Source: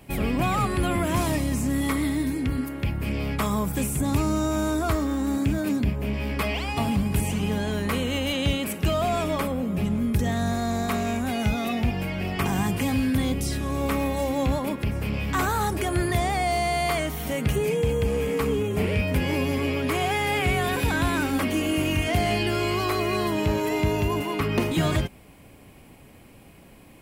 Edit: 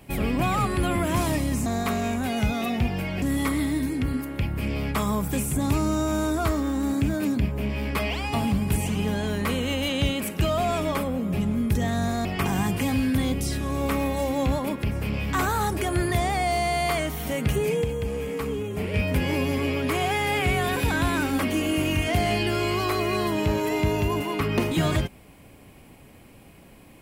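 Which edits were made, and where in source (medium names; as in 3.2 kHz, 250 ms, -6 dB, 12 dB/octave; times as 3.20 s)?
10.69–12.25 s: move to 1.66 s
17.84–18.94 s: gain -4.5 dB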